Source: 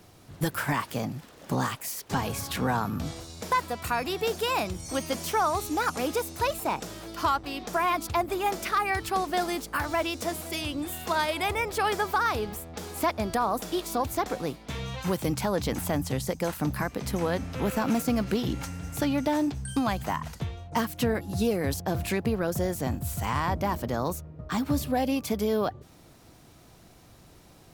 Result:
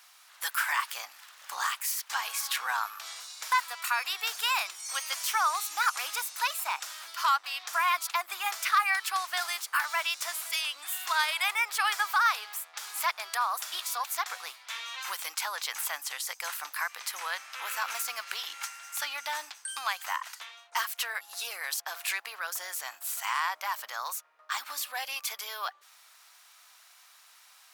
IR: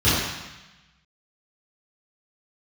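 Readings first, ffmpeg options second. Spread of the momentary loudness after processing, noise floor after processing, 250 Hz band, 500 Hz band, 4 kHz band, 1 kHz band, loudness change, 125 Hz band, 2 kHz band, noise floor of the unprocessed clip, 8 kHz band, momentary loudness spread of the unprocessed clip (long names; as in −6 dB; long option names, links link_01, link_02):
10 LU, −58 dBFS, below −40 dB, −19.0 dB, +3.5 dB, −2.0 dB, −2.0 dB, below −40 dB, +3.5 dB, −54 dBFS, +3.5 dB, 7 LU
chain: -af "highpass=frequency=1100:width=0.5412,highpass=frequency=1100:width=1.3066,volume=3.5dB"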